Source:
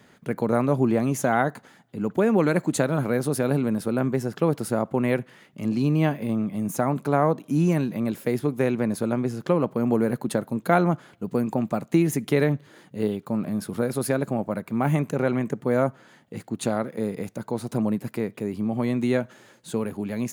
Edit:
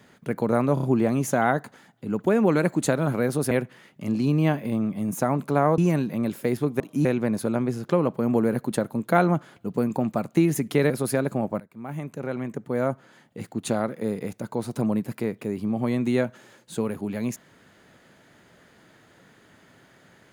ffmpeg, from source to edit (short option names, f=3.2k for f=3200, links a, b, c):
-filter_complex "[0:a]asplit=10[a][b][c][d][e][f][g][h][i][j];[a]atrim=end=0.772[k];[b]atrim=start=0.738:end=0.772[l];[c]atrim=start=0.738:end=0.772[m];[d]atrim=start=0.738:end=3.422[n];[e]atrim=start=5.078:end=7.352[o];[f]atrim=start=7.598:end=8.622[p];[g]atrim=start=7.348:end=7.602[q];[h]atrim=start=8.618:end=12.472[r];[i]atrim=start=13.858:end=14.56,asetpts=PTS-STARTPTS,afade=t=out:st=0.698:d=0.004:c=hsin:silence=0.112202[s];[j]atrim=start=14.56,asetpts=PTS-STARTPTS,afade=t=in:d=1.84:silence=0.112202[t];[k][l]acrossfade=d=0.004:c1=hsin:c2=hsin[u];[u][m]acrossfade=d=0.004:c1=hsin:c2=hsin[v];[v][n]acrossfade=d=0.004:c1=hsin:c2=hsin[w];[w][o]acrossfade=d=0.004:c1=hsin:c2=hsin[x];[x][p]acrossfade=d=0.004:c1=hsin:c2=hsin[y];[y][q]acrossfade=d=0.004:c1=hsin:c2=hsin[z];[z][r]acrossfade=d=0.004:c1=hsin:c2=hsin[aa];[s][t]concat=n=2:v=0:a=1[ab];[aa][ab]acrossfade=d=0.004:c1=hsin:c2=hsin"